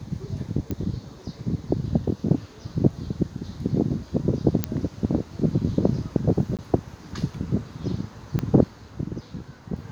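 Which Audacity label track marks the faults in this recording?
0.710000	0.710000	click −16 dBFS
4.640000	4.640000	click −6 dBFS
6.570000	6.590000	drop-out 17 ms
8.390000	8.390000	click −13 dBFS

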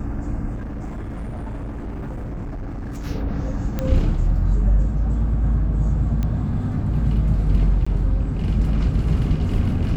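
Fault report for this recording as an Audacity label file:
0.540000	3.070000	clipping −26.5 dBFS
3.790000	3.790000	click −11 dBFS
6.230000	6.230000	click −14 dBFS
7.850000	7.870000	drop-out 15 ms

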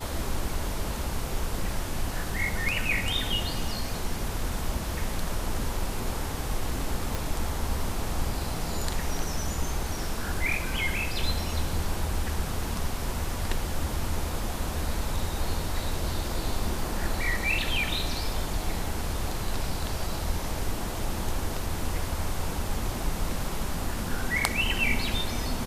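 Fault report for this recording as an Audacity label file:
7.150000	7.150000	click

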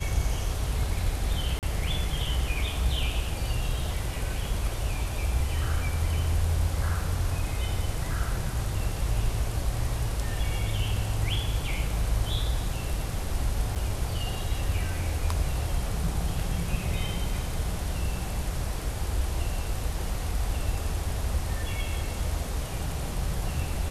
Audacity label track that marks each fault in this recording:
1.590000	1.630000	drop-out 38 ms
13.750000	13.760000	drop-out 7.7 ms

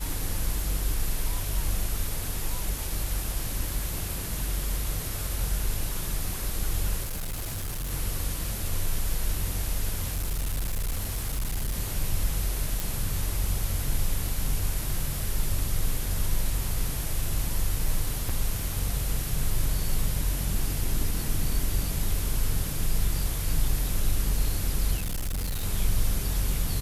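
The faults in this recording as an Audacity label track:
7.030000	7.920000	clipping −28.5 dBFS
10.100000	11.750000	clipping −24.5 dBFS
12.800000	12.800000	click
18.290000	18.290000	drop-out 4.8 ms
24.960000	25.640000	clipping −26 dBFS

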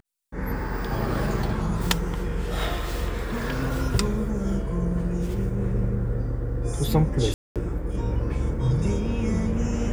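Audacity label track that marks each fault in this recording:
7.340000	7.560000	drop-out 217 ms

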